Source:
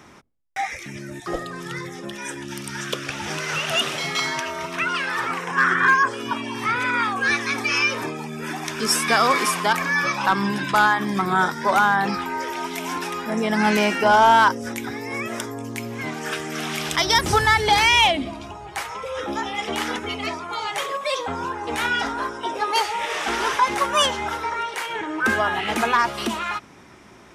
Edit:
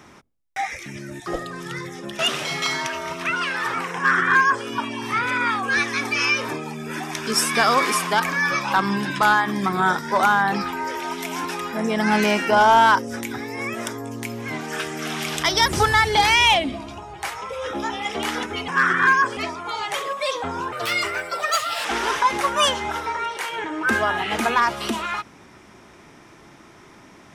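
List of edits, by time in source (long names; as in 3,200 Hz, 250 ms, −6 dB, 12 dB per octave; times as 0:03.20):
0:02.19–0:03.72: remove
0:05.49–0:06.18: duplicate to 0:20.21
0:21.56–0:23.22: play speed 147%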